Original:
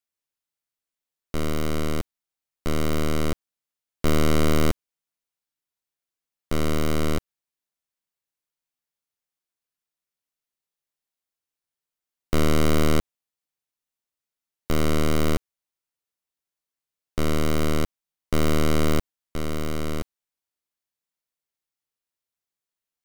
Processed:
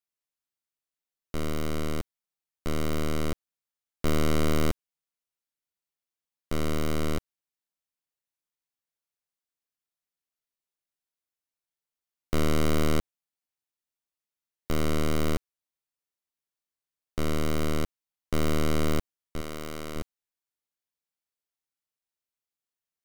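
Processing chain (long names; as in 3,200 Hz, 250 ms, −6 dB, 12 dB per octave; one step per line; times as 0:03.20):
0:19.41–0:19.96: low-shelf EQ 280 Hz −9 dB
level −4.5 dB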